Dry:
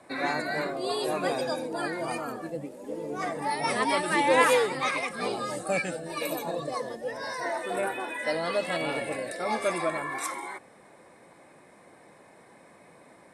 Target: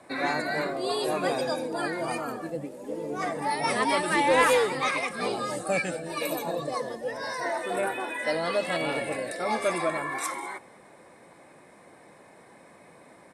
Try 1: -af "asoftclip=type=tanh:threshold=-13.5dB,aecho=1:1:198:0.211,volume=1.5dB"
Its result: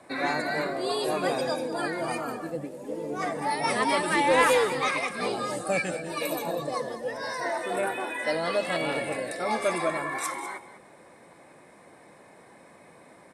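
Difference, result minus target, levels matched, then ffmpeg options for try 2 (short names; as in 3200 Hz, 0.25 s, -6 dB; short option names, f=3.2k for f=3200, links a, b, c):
echo-to-direct +9 dB
-af "asoftclip=type=tanh:threshold=-13.5dB,aecho=1:1:198:0.075,volume=1.5dB"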